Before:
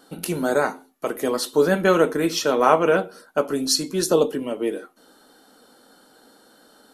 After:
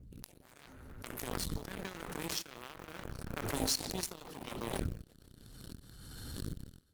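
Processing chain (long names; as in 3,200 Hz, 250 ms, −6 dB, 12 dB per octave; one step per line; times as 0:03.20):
fade in at the beginning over 1.70 s
wind on the microphone 120 Hz −38 dBFS
downward compressor 2.5 to 1, threshold −36 dBFS, peak gain reduction 17 dB
on a send: delay with a low-pass on its return 149 ms, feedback 71%, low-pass 2,500 Hz, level −11 dB
on the sum: floating-point word with a short mantissa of 4 bits
guitar amp tone stack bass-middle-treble 6-0-2
harmonic generator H 5 −43 dB, 7 −16 dB, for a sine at −34.5 dBFS
background raised ahead of every attack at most 26 dB per second
level +15 dB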